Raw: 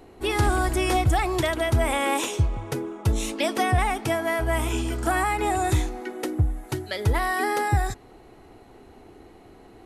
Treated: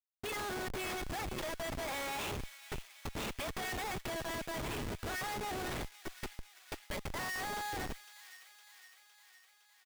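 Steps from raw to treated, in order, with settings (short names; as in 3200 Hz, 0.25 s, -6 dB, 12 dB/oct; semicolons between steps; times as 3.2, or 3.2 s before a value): LPF 3100 Hz 12 dB/oct; differentiator; comb 4.9 ms, depth 55%; in parallel at -2.5 dB: compressor 8:1, threshold -47 dBFS, peak gain reduction 13 dB; on the sum: Schmitt trigger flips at -39.5 dBFS; on a send: thin delay 0.51 s, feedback 65%, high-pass 2000 Hz, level -11.5 dB; on the sum: gain +3 dB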